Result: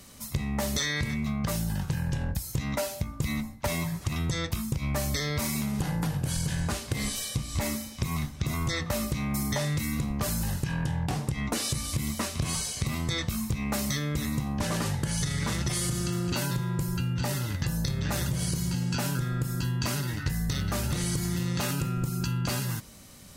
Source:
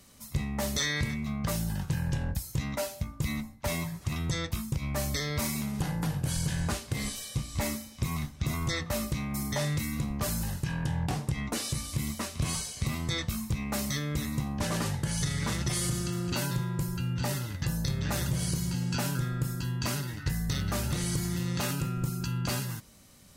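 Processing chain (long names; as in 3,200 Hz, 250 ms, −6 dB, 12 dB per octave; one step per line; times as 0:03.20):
downward compressor, threshold −32 dBFS, peak gain reduction 8 dB
level +6.5 dB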